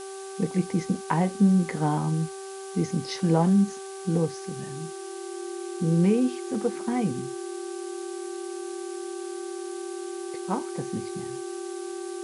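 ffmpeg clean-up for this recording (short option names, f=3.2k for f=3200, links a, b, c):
-af "bandreject=f=387.2:t=h:w=4,bandreject=f=774.4:t=h:w=4,bandreject=f=1.1616k:t=h:w=4,bandreject=f=1.5488k:t=h:w=4,bandreject=f=350:w=30,afftdn=nr=30:nf=-38"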